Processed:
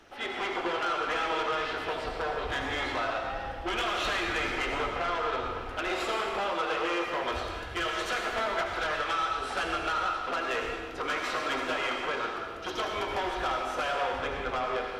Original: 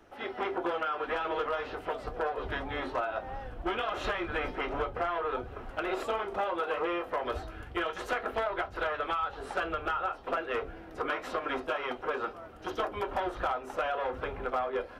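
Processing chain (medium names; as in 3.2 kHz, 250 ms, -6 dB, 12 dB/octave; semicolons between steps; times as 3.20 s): peaking EQ 4.1 kHz +10 dB 2.7 oct; saturation -26 dBFS, distortion -13 dB; on a send: reverberation RT60 1.4 s, pre-delay 68 ms, DRR 1.5 dB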